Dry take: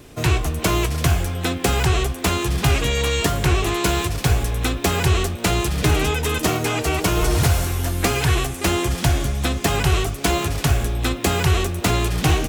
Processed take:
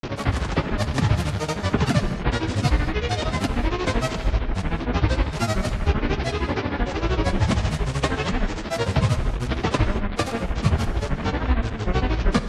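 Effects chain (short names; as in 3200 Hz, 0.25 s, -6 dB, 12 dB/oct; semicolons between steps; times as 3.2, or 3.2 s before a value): delta modulation 32 kbps, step -20 dBFS; LPF 2000 Hz 6 dB/oct; grains, grains 13/s, pitch spread up and down by 12 st; non-linear reverb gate 0.25 s flat, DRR 9 dB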